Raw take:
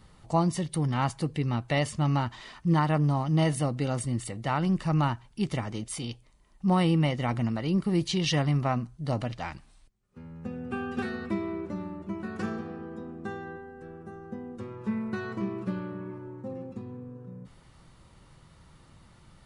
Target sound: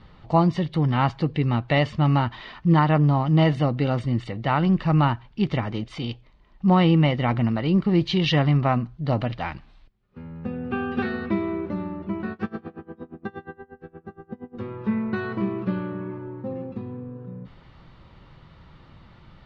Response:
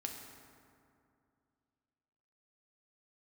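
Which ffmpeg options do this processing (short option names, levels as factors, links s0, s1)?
-filter_complex "[0:a]lowpass=f=4000:w=0.5412,lowpass=f=4000:w=1.3066,asettb=1/sr,asplit=3[s0][s1][s2];[s0]atrim=end=12.324[s3];[s1]atrim=start=12.32:end=14.56,asetpts=PTS-STARTPTS,afade=t=in:d=0.004:c=qsin,afade=t=out:st=2.236:d=0.004:c=qsin,aeval=exprs='val(0)*pow(10,-26*(0.5-0.5*cos(2*PI*8.5*n/s))/20)':c=same[s4];[s2]atrim=start=14.556[s5];[s3][s4]acrossfade=d=0.004:c1=hsin:c2=qsin[s6];[s6][s5]acrossfade=d=0.004:c1=qsin:c2=hsin,volume=2"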